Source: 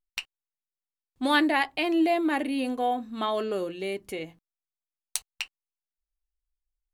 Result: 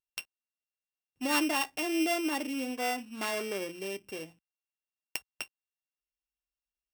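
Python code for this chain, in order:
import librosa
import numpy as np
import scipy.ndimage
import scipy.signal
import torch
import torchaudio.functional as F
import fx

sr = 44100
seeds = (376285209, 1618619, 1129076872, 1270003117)

y = np.r_[np.sort(x[:len(x) // 16 * 16].reshape(-1, 16), axis=1).ravel(), x[len(x) // 16 * 16:]]
y = scipy.signal.sosfilt(scipy.signal.butter(2, 45.0, 'highpass', fs=sr, output='sos'), y)
y = fx.low_shelf(y, sr, hz=74.0, db=-8.0)
y = y * 10.0 ** (-5.5 / 20.0)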